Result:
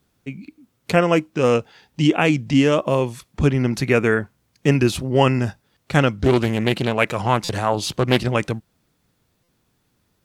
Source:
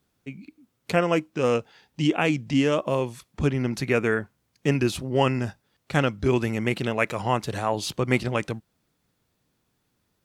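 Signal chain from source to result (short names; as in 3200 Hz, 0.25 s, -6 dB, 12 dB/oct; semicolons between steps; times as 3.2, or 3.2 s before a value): low shelf 150 Hz +3 dB; stuck buffer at 7.44/9.43, samples 256, times 8; 6.14–8.2 Doppler distortion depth 0.32 ms; gain +5 dB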